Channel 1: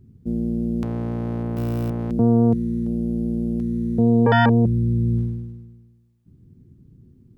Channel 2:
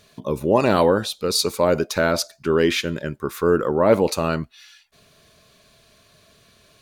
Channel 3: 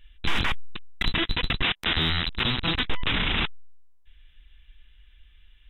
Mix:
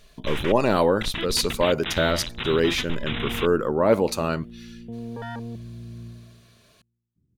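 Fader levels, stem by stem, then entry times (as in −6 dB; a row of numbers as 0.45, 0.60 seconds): −18.5, −3.0, −5.5 decibels; 0.90, 0.00, 0.00 seconds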